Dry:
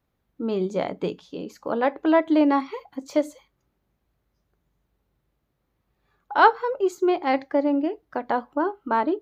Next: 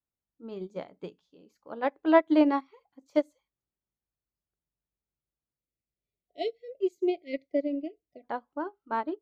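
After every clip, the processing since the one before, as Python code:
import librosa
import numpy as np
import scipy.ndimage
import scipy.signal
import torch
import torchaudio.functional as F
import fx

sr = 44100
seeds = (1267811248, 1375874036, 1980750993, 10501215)

y = fx.spec_erase(x, sr, start_s=5.58, length_s=2.66, low_hz=730.0, high_hz=1900.0)
y = fx.upward_expand(y, sr, threshold_db=-30.0, expansion=2.5)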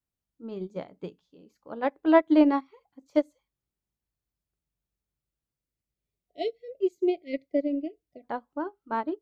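y = fx.low_shelf(x, sr, hz=240.0, db=7.0)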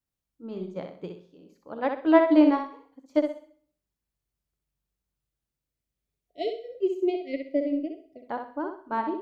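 y = fx.echo_feedback(x, sr, ms=63, feedback_pct=29, wet_db=-6.0)
y = fx.rev_plate(y, sr, seeds[0], rt60_s=0.52, hf_ratio=0.85, predelay_ms=75, drr_db=17.0)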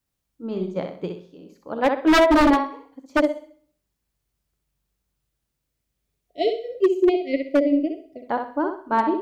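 y = 10.0 ** (-18.0 / 20.0) * (np.abs((x / 10.0 ** (-18.0 / 20.0) + 3.0) % 4.0 - 2.0) - 1.0)
y = y * 10.0 ** (8.0 / 20.0)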